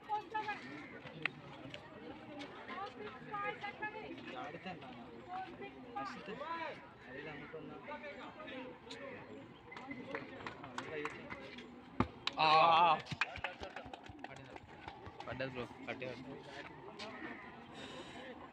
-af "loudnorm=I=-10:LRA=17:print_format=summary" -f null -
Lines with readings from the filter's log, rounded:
Input Integrated:    -41.5 LUFS
Input True Peak:     -15.6 dBTP
Input LRA:            13.7 LU
Input Threshold:     -51.9 LUFS